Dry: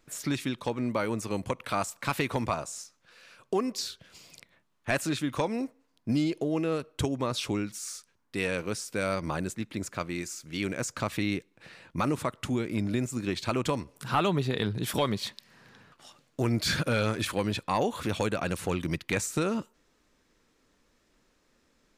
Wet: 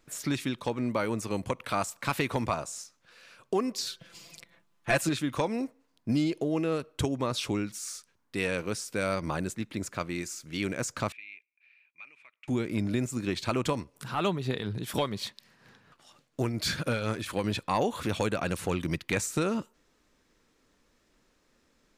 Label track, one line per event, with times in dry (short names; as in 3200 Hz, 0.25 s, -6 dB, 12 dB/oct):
3.860000	5.090000	comb 5.9 ms, depth 83%
11.120000	12.480000	band-pass 2400 Hz, Q 16
13.730000	17.440000	tremolo triangle 4.2 Hz, depth 60%